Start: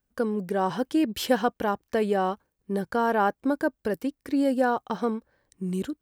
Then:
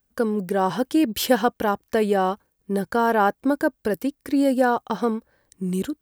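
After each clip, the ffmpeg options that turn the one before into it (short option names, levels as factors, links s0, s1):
-af "highshelf=f=9100:g=8,volume=1.58"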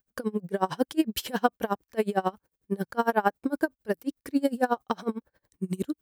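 -af "aeval=exprs='val(0)*pow(10,-28*(0.5-0.5*cos(2*PI*11*n/s))/20)':c=same"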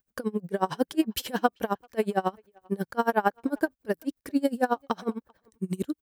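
-filter_complex "[0:a]asplit=2[s0][s1];[s1]adelay=390,highpass=300,lowpass=3400,asoftclip=type=hard:threshold=0.168,volume=0.0355[s2];[s0][s2]amix=inputs=2:normalize=0"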